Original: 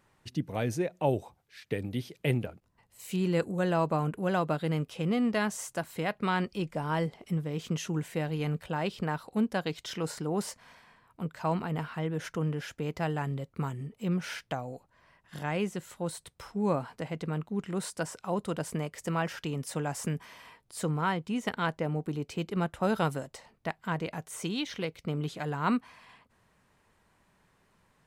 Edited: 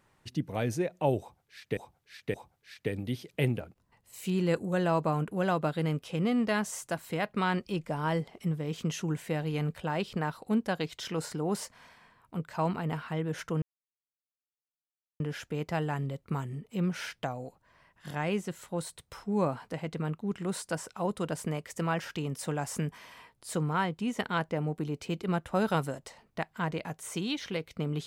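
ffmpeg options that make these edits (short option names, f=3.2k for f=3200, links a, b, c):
-filter_complex "[0:a]asplit=4[a][b][c][d];[a]atrim=end=1.772[e];[b]atrim=start=1.198:end=1.772[f];[c]atrim=start=1.198:end=12.48,asetpts=PTS-STARTPTS,afade=t=out:st=11.278:d=0.004:c=hsin,apad=pad_dur=1.58[g];[d]atrim=start=12.48,asetpts=PTS-STARTPTS,afade=t=in:d=0.004:c=hsin[h];[e][f]acrossfade=d=0.004:c1=hsin:c2=hsin[i];[g][h]concat=n=2:v=0:a=1[j];[i][j]acrossfade=d=0.004:c1=hsin:c2=hsin"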